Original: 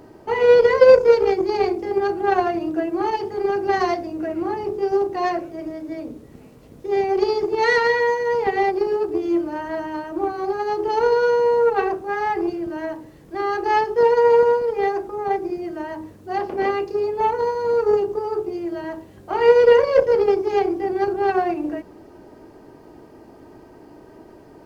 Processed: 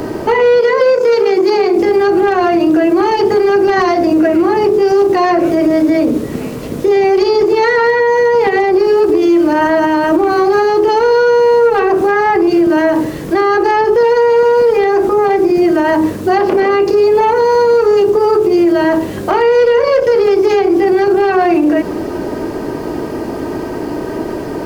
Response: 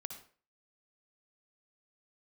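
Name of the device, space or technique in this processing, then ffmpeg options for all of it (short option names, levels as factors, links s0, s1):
mastering chain: -filter_complex "[0:a]equalizer=f=800:t=o:w=0.36:g=-4,acrossover=split=150|1800[s0][s1][s2];[s0]acompressor=threshold=0.00126:ratio=4[s3];[s1]acompressor=threshold=0.0631:ratio=4[s4];[s2]acompressor=threshold=0.00794:ratio=4[s5];[s3][s4][s5]amix=inputs=3:normalize=0,acompressor=threshold=0.0398:ratio=2.5,asoftclip=type=hard:threshold=0.0794,alimiter=level_in=26.6:limit=0.891:release=50:level=0:latency=1,asettb=1/sr,asplit=3[s6][s7][s8];[s6]atrim=end=0.604[s9];[s7]atrim=start=0.6:end=1.76,asetpts=PTS-STARTPTS,afade=t=in:d=0.004:c=qsin,afade=t=out:st=1.156:d=0.004:c=qsin,highpass=170[s10];[s8]atrim=start=1.756[s11];[s9][s10]acrossfade=d=0.004:c1=hsin:c2=qsin[s12];[s12][s11]acrossfade=d=0.004:c1=qsin:c2=hsin,volume=0.668"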